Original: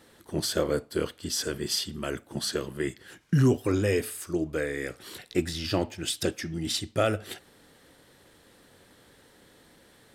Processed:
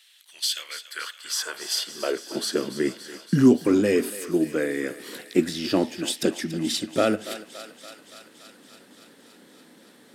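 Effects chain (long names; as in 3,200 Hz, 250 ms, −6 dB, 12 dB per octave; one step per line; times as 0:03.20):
high-pass filter sweep 2,900 Hz → 230 Hz, 0:00.53–0:02.65
feedback echo with a high-pass in the loop 284 ms, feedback 77%, high-pass 550 Hz, level −13 dB
level +2 dB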